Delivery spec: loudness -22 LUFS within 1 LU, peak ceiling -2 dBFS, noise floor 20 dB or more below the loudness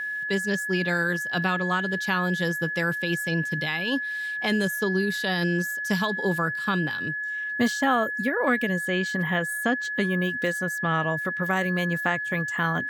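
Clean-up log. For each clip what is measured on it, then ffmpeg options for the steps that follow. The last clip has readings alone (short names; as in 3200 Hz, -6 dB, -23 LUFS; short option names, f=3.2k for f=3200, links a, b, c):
steady tone 1700 Hz; tone level -28 dBFS; loudness -25.5 LUFS; peak -9.5 dBFS; loudness target -22.0 LUFS
-> -af "bandreject=f=1.7k:w=30"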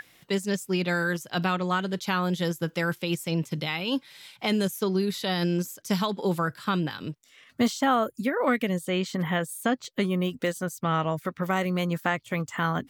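steady tone none; loudness -27.5 LUFS; peak -11.0 dBFS; loudness target -22.0 LUFS
-> -af "volume=5.5dB"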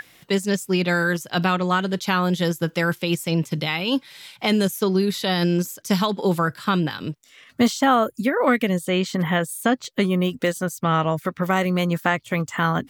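loudness -22.0 LUFS; peak -5.5 dBFS; noise floor -54 dBFS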